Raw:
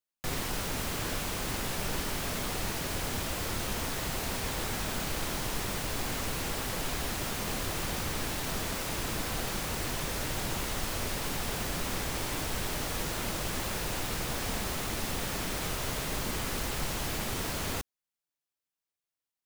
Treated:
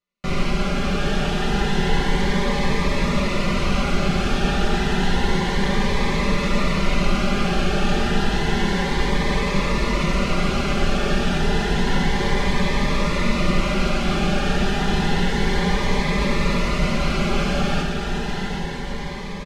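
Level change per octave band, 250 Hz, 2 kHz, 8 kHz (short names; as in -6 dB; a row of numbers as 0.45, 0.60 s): +16.5, +12.0, -1.0 dB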